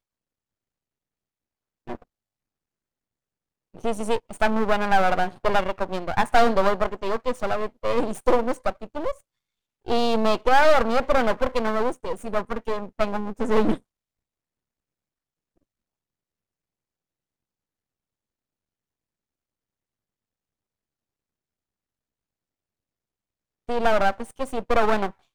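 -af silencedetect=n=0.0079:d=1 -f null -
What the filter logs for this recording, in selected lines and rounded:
silence_start: 0.00
silence_end: 1.87 | silence_duration: 1.87
silence_start: 2.03
silence_end: 3.74 | silence_duration: 1.71
silence_start: 13.78
silence_end: 23.69 | silence_duration: 9.90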